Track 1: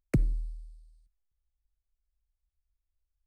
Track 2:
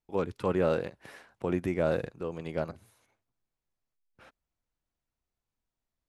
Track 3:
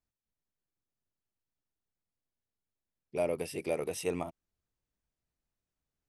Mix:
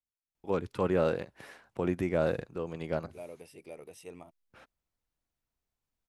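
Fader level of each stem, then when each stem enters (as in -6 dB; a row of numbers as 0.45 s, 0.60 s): mute, -0.5 dB, -13.5 dB; mute, 0.35 s, 0.00 s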